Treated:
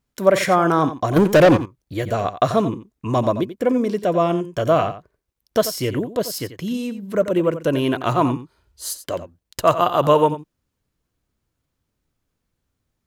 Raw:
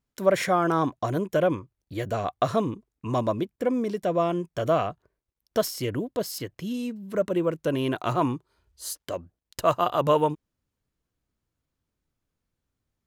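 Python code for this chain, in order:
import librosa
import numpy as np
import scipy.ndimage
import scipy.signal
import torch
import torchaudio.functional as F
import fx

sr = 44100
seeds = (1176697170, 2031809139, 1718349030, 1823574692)

p1 = fx.leveller(x, sr, passes=3, at=(1.16, 1.57))
p2 = p1 + fx.echo_single(p1, sr, ms=88, db=-12.5, dry=0)
y = p2 * 10.0 ** (6.0 / 20.0)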